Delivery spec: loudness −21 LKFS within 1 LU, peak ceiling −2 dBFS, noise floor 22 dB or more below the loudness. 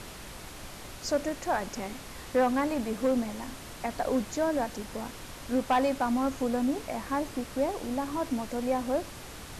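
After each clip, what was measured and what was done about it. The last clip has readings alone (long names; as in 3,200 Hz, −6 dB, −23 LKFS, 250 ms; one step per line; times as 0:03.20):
share of clipped samples 0.4%; peaks flattened at −19.0 dBFS; background noise floor −44 dBFS; target noise floor −53 dBFS; integrated loudness −30.5 LKFS; sample peak −19.0 dBFS; target loudness −21.0 LKFS
→ clipped peaks rebuilt −19 dBFS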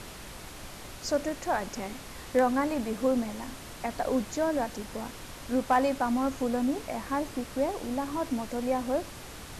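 share of clipped samples 0.0%; background noise floor −44 dBFS; target noise floor −53 dBFS
→ noise reduction from a noise print 9 dB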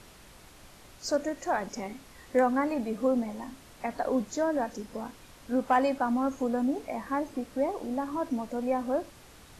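background noise floor −53 dBFS; integrated loudness −30.5 LKFS; sample peak −13.5 dBFS; target loudness −21.0 LKFS
→ level +9.5 dB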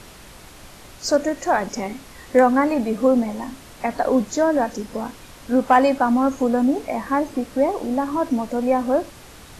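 integrated loudness −21.0 LKFS; sample peak −4.0 dBFS; background noise floor −44 dBFS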